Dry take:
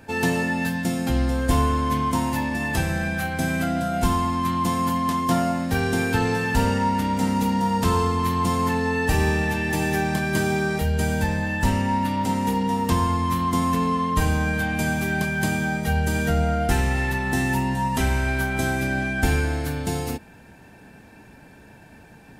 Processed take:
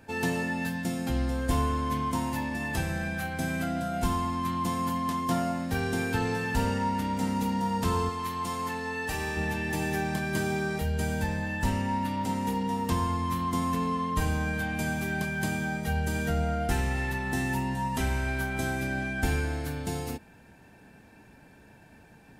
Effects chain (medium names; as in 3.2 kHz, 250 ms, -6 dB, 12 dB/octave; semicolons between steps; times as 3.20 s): 8.09–9.37 s: bass shelf 430 Hz -9.5 dB; trim -6.5 dB